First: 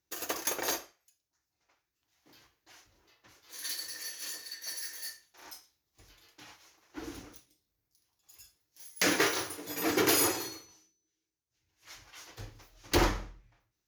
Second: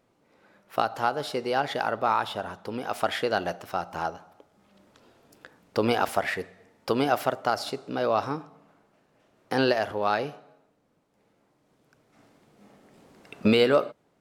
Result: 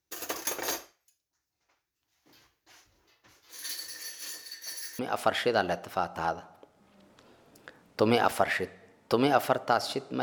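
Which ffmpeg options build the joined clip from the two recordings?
-filter_complex "[0:a]apad=whole_dur=10.22,atrim=end=10.22,atrim=end=4.992[a];[1:a]atrim=start=2.758:end=7.99[b];[a][b]acrossfade=d=0.004:c1=hsin:c2=hsin"

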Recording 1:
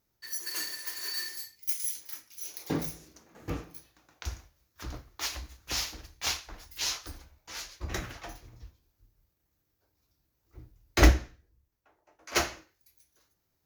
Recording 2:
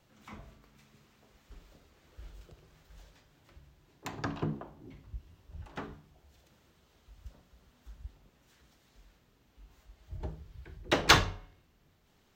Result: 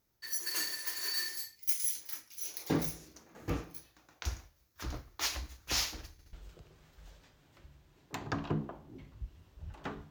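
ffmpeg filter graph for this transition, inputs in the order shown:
-filter_complex "[0:a]apad=whole_dur=10.1,atrim=end=10.1,asplit=3[a][b][c];[a]atrim=end=6.192[d];[b]atrim=start=6.118:end=6.192[e];[c]atrim=start=6.118:end=6.192[f];[1:a]atrim=start=2.248:end=6.02[g];[d][e]acrossfade=d=0.004:c1=hsin:c2=hsin[h];[h][f]acrossfade=d=0.004:c1=hsin:c2=hsin[i];[i][g]acrossfade=d=0.004:c1=hsin:c2=hsin"

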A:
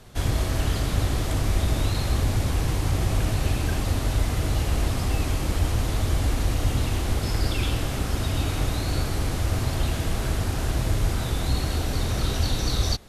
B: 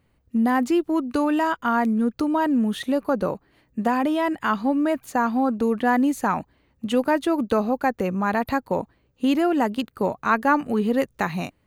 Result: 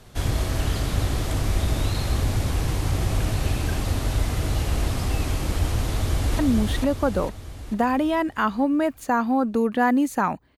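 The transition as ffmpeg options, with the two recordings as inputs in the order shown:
-filter_complex "[0:a]apad=whole_dur=10.57,atrim=end=10.57,atrim=end=6.392[a];[1:a]atrim=start=2.448:end=6.63[b];[a][b]acrossfade=d=0.004:c1=hsin:c2=hsin,asplit=2[c][d];[d]afade=t=in:st=5.87:d=0.01,afade=t=out:st=6.39:d=0.01,aecho=0:1:450|900|1350|1800|2250|2700|3150:0.749894|0.374947|0.187474|0.0937368|0.0468684|0.0234342|0.0117171[e];[c][e]amix=inputs=2:normalize=0"

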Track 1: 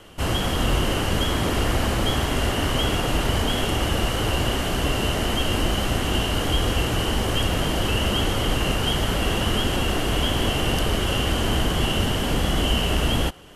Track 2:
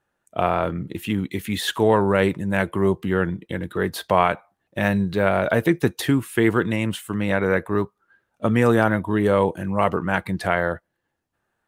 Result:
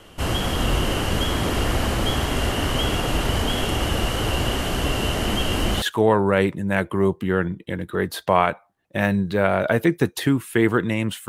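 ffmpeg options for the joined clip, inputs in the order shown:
-filter_complex "[1:a]asplit=2[a][b];[0:a]apad=whole_dur=11.28,atrim=end=11.28,atrim=end=5.822[c];[b]atrim=start=1.638:end=7.1[d];[a]atrim=start=1.09:end=1.64,asetpts=PTS-STARTPTS,volume=-8dB,afade=t=in:d=0.004:c=hsin,afade=t=out:st=0.546:d=0.004:c=hsin,adelay=5270[e];[c][d]acrossfade=d=0.004:c1=hsin:c2=hsin[f];[f][e]amix=inputs=2:normalize=0"

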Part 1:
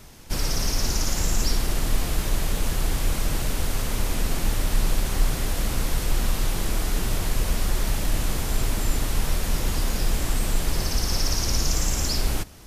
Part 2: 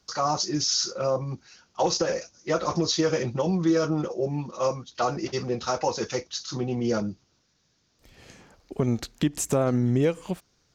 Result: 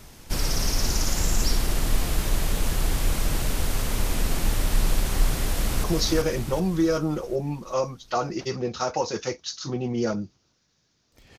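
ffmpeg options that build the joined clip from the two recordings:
-filter_complex "[0:a]apad=whole_dur=11.38,atrim=end=11.38,atrim=end=5.842[a];[1:a]atrim=start=2.708:end=8.25[b];[a][b]acrossfade=d=0.004:c1=hsin:c2=hsin,asplit=2[c][d];[d]afade=t=in:st=5.46:d=0.01,afade=t=out:st=5.84:d=0.01,aecho=0:1:380|760|1140|1520|1900|2280|2660:0.707946|0.353973|0.176986|0.0884932|0.0442466|0.0221233|0.0110617[e];[c][e]amix=inputs=2:normalize=0"

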